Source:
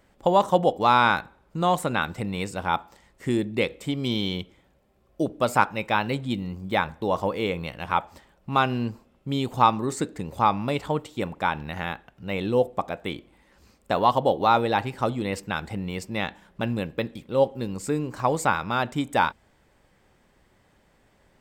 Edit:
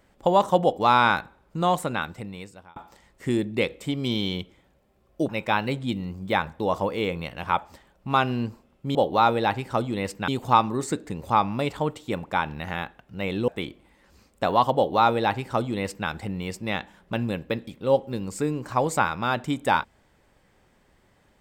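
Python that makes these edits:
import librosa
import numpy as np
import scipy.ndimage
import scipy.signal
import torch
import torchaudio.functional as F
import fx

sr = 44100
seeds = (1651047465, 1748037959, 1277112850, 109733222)

y = fx.edit(x, sr, fx.fade_out_span(start_s=1.67, length_s=1.09),
    fx.cut(start_s=5.29, length_s=0.42),
    fx.cut(start_s=12.57, length_s=0.39),
    fx.duplicate(start_s=14.23, length_s=1.33, to_s=9.37), tone=tone)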